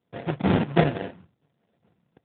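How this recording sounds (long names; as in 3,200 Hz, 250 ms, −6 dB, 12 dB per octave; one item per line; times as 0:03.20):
a buzz of ramps at a fixed pitch in blocks of 64 samples
phaser sweep stages 12, 1.4 Hz, lowest notch 670–1,800 Hz
aliases and images of a low sample rate 1,200 Hz, jitter 20%
AMR narrowband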